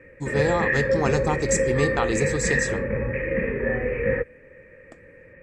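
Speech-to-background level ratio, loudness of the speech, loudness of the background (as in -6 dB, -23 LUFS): -1.5 dB, -26.0 LUFS, -24.5 LUFS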